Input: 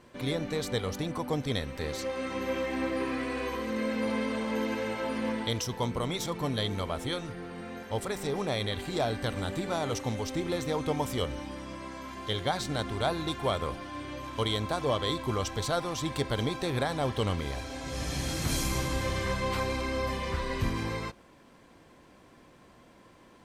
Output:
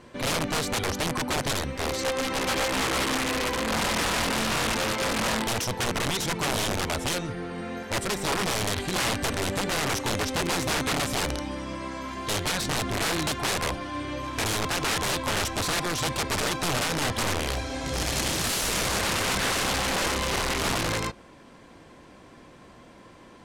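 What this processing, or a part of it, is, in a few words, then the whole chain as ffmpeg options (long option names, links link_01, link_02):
overflowing digital effects unit: -af "aeval=exprs='(mod(22.4*val(0)+1,2)-1)/22.4':channel_layout=same,lowpass=11000,volume=6.5dB"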